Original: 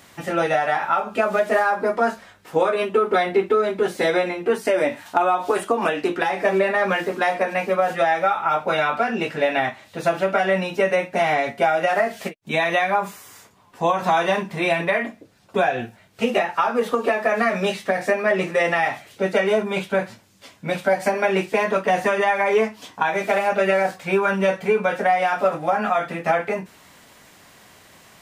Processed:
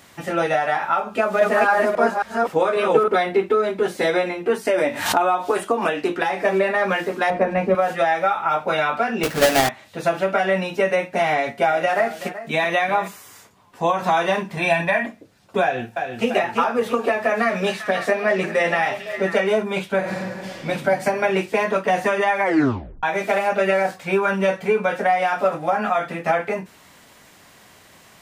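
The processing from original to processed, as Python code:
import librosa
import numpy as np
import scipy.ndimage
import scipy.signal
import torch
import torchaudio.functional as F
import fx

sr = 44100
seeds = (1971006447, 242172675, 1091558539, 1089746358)

y = fx.reverse_delay(x, sr, ms=271, wet_db=-1.0, at=(1.14, 3.08))
y = fx.pre_swell(y, sr, db_per_s=71.0, at=(4.73, 5.3))
y = fx.tilt_eq(y, sr, slope=-3.5, at=(7.3, 7.75))
y = fx.halfwave_hold(y, sr, at=(9.23, 9.69))
y = fx.echo_single(y, sr, ms=380, db=-13.5, at=(11.3, 13.08))
y = fx.comb(y, sr, ms=1.2, depth=0.65, at=(14.57, 15.06))
y = fx.echo_throw(y, sr, start_s=15.62, length_s=0.68, ms=340, feedback_pct=55, wet_db=-5.0)
y = fx.echo_stepped(y, sr, ms=273, hz=3900.0, octaves=-1.4, feedback_pct=70, wet_db=-4, at=(17.12, 19.4))
y = fx.reverb_throw(y, sr, start_s=19.99, length_s=0.67, rt60_s=2.4, drr_db=-7.5)
y = fx.edit(y, sr, fx.tape_stop(start_s=22.43, length_s=0.6), tone=tone)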